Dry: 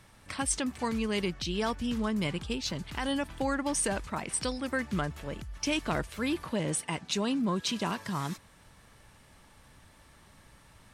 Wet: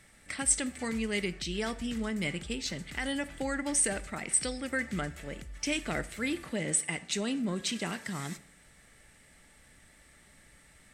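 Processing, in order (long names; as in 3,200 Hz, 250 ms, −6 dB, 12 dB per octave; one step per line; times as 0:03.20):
thirty-one-band graphic EQ 100 Hz −12 dB, 1,000 Hz −12 dB, 2,000 Hz +9 dB, 8,000 Hz +10 dB
dense smooth reverb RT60 0.61 s, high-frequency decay 0.8×, DRR 13 dB
level −2.5 dB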